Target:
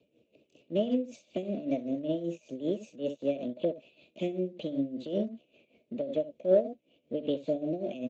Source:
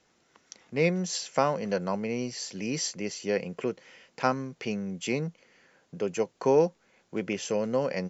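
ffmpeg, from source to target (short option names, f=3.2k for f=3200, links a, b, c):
-filter_complex "[0:a]asuperstop=centerf=890:order=20:qfactor=0.72,asetrate=60591,aresample=44100,atempo=0.727827,asplit=2[a][b];[b]acompressor=threshold=-43dB:ratio=6,volume=-0.5dB[c];[a][c]amix=inputs=2:normalize=0,lowpass=1.8k,asplit=2[d][e];[e]aecho=0:1:65|79:0.376|0.141[f];[d][f]amix=inputs=2:normalize=0,acontrast=64,tremolo=f=5.2:d=0.74,volume=-5.5dB" -ar 16000 -c:a libspeex -b:a 17k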